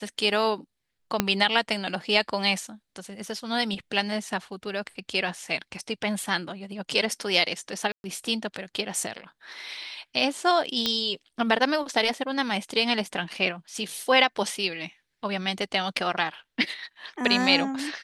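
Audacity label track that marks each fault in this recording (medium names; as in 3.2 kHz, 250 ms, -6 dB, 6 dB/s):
1.200000	1.200000	pop -5 dBFS
7.920000	8.040000	dropout 121 ms
10.860000	10.860000	pop -9 dBFS
13.780000	13.780000	dropout 2.5 ms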